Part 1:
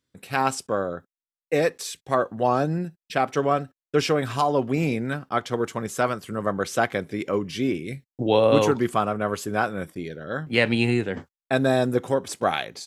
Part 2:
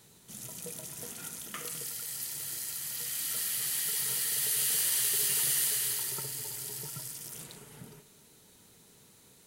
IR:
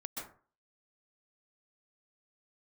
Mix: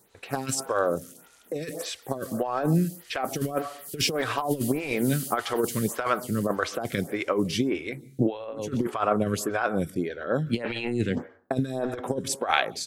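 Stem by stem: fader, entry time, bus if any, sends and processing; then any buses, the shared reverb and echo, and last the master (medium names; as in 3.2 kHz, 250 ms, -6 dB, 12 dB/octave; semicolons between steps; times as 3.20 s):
+2.0 dB, 0.00 s, send -18 dB, none
-2.5 dB, 0.00 s, send -13.5 dB, auto duck -11 dB, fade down 1.35 s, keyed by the first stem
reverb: on, RT60 0.40 s, pre-delay 118 ms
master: compressor with a negative ratio -22 dBFS, ratio -0.5; lamp-driven phase shifter 1.7 Hz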